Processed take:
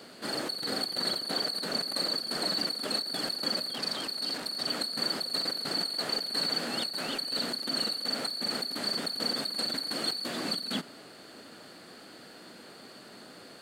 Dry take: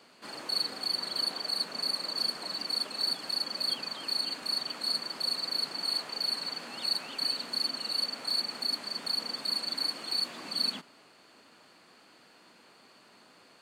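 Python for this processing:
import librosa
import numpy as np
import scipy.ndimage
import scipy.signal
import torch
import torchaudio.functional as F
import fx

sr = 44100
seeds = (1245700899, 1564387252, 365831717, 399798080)

y = fx.graphic_eq_15(x, sr, hz=(1000, 2500, 6300), db=(-9, -8, -5))
y = fx.over_compress(y, sr, threshold_db=-40.0, ratio=-1.0)
y = fx.transformer_sat(y, sr, knee_hz=2300.0, at=(3.7, 4.67))
y = y * 10.0 ** (8.0 / 20.0)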